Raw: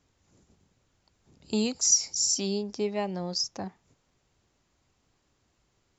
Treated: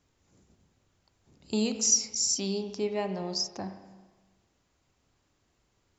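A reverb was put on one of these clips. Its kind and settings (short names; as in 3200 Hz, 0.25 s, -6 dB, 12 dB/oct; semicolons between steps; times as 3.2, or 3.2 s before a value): spring tank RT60 1.3 s, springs 31/42 ms, chirp 60 ms, DRR 7 dB; gain -1.5 dB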